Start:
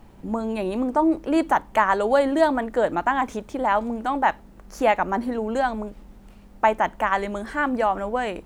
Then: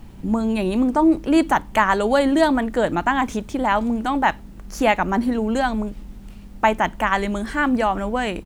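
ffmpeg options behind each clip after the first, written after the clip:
ffmpeg -i in.wav -af "firequalizer=gain_entry='entry(150,0);entry(510,-9);entry(2900,-2)':delay=0.05:min_phase=1,volume=9dB" out.wav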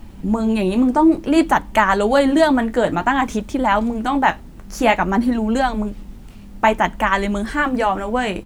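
ffmpeg -i in.wav -af "flanger=delay=3.2:depth=9.3:regen=-52:speed=0.56:shape=sinusoidal,volume=6.5dB" out.wav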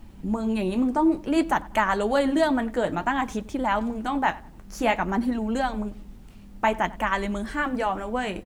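ffmpeg -i in.wav -filter_complex "[0:a]asplit=2[link_01][link_02];[link_02]adelay=95,lowpass=frequency=2200:poles=1,volume=-20dB,asplit=2[link_03][link_04];[link_04]adelay=95,lowpass=frequency=2200:poles=1,volume=0.35,asplit=2[link_05][link_06];[link_06]adelay=95,lowpass=frequency=2200:poles=1,volume=0.35[link_07];[link_01][link_03][link_05][link_07]amix=inputs=4:normalize=0,volume=-7.5dB" out.wav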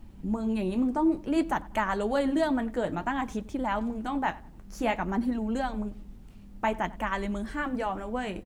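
ffmpeg -i in.wav -af "lowshelf=frequency=440:gain=4.5,volume=-6.5dB" out.wav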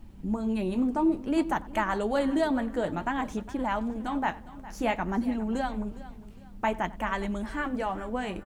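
ffmpeg -i in.wav -af "aecho=1:1:409|818|1227:0.141|0.0452|0.0145" out.wav

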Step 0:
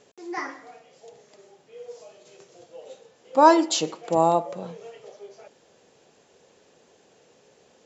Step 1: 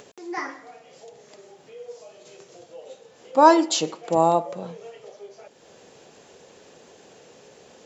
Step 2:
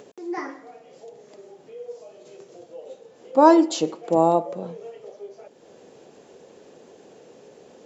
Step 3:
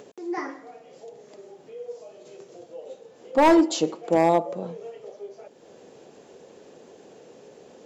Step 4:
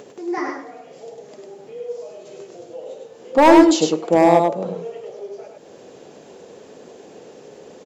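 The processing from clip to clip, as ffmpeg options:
ffmpeg -i in.wav -af "acompressor=mode=upward:threshold=-42dB:ratio=2.5,volume=1dB" out.wav
ffmpeg -i in.wav -af "equalizer=frequency=330:width_type=o:width=2.6:gain=10,volume=-6dB" out.wav
ffmpeg -i in.wav -af "volume=11.5dB,asoftclip=hard,volume=-11.5dB" out.wav
ffmpeg -i in.wav -af "aecho=1:1:101:0.668,volume=5dB" out.wav

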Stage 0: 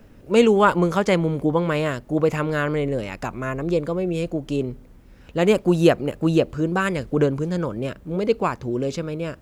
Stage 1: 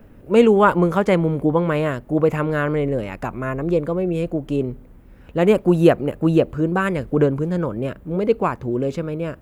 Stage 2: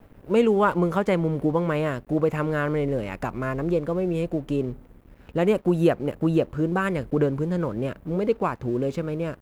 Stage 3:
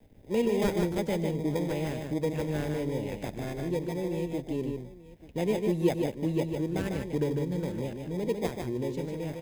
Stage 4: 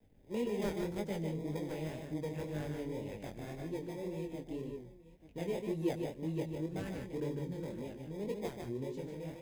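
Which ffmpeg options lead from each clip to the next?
ffmpeg -i in.wav -af "equalizer=frequency=5400:width_type=o:width=1.6:gain=-11.5,volume=2.5dB" out.wav
ffmpeg -i in.wav -af "acompressor=threshold=-26dB:ratio=1.5,aeval=exprs='sgn(val(0))*max(abs(val(0))-0.00335,0)':channel_layout=same" out.wav
ffmpeg -i in.wav -filter_complex "[0:a]acrossover=split=190|610|2000[link_01][link_02][link_03][link_04];[link_03]acrusher=samples=31:mix=1:aa=0.000001[link_05];[link_01][link_02][link_05][link_04]amix=inputs=4:normalize=0,aecho=1:1:94|150|164|886:0.119|0.562|0.141|0.126,volume=-7dB" out.wav
ffmpeg -i in.wav -af "flanger=delay=19:depth=6.9:speed=1.9,volume=-6dB" out.wav

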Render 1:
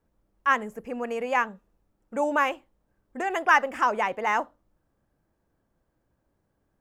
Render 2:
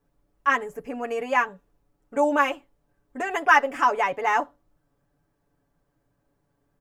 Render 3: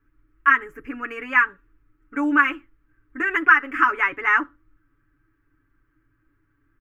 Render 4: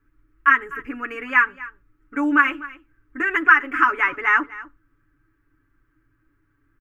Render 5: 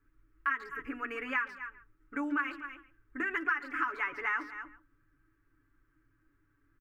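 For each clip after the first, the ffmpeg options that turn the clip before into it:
ffmpeg -i in.wav -af "aecho=1:1:7:0.79" out.wav
ffmpeg -i in.wav -af "firequalizer=gain_entry='entry(100,0);entry(180,-20);entry(320,2);entry(450,-17);entry(670,-27);entry(1300,4);entry(2200,1);entry(3800,-14);entry(8100,-20);entry(13000,-13)':delay=0.05:min_phase=1,acompressor=threshold=-18dB:ratio=6,equalizer=frequency=3900:width_type=o:width=1.8:gain=-3,volume=8.5dB" out.wav
ffmpeg -i in.wav -af "aecho=1:1:249:0.119,volume=1dB" out.wav
ffmpeg -i in.wav -filter_complex "[0:a]acompressor=threshold=-28dB:ratio=2.5,bandreject=frequency=60:width_type=h:width=6,bandreject=frequency=120:width_type=h:width=6,bandreject=frequency=180:width_type=h:width=6,bandreject=frequency=240:width_type=h:width=6,bandreject=frequency=300:width_type=h:width=6,asplit=2[link_01][link_02];[link_02]adelay=140,highpass=300,lowpass=3400,asoftclip=type=hard:threshold=-22.5dB,volume=-16dB[link_03];[link_01][link_03]amix=inputs=2:normalize=0,volume=-5.5dB" out.wav

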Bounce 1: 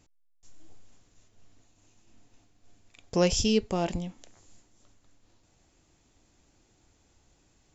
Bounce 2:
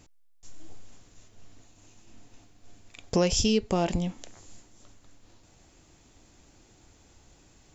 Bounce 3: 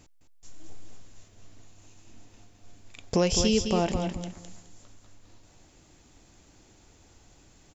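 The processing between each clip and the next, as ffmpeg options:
ffmpeg -i in.wav -af "acompressor=threshold=-30dB:ratio=3,volume=7.5dB" out.wav
ffmpeg -i in.wav -af "aecho=1:1:210|420|630:0.447|0.0938|0.0197" out.wav

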